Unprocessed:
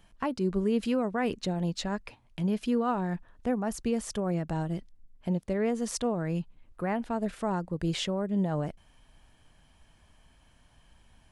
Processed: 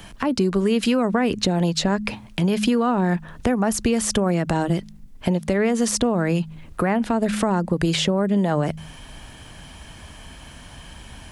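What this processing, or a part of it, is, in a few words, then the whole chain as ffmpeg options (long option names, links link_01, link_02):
mastering chain: -filter_complex "[0:a]highpass=frequency=53:poles=1,equalizer=frequency=760:width_type=o:width=1.9:gain=-2.5,bandreject=frequency=52.63:width_type=h:width=4,bandreject=frequency=105.26:width_type=h:width=4,bandreject=frequency=157.89:width_type=h:width=4,bandreject=frequency=210.52:width_type=h:width=4,acrossover=split=260|760[link_01][link_02][link_03];[link_01]acompressor=threshold=-40dB:ratio=4[link_04];[link_02]acompressor=threshold=-39dB:ratio=4[link_05];[link_03]acompressor=threshold=-41dB:ratio=4[link_06];[link_04][link_05][link_06]amix=inputs=3:normalize=0,acompressor=threshold=-42dB:ratio=2.5,alimiter=level_in=30.5dB:limit=-1dB:release=50:level=0:latency=1,volume=-8dB"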